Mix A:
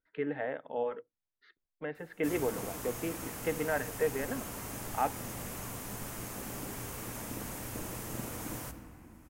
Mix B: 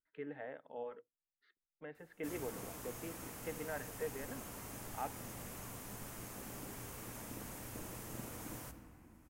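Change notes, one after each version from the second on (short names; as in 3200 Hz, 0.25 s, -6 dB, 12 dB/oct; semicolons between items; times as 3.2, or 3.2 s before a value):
speech -11.0 dB; background -7.0 dB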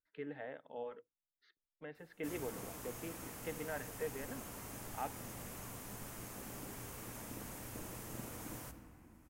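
speech: add tone controls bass +2 dB, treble +14 dB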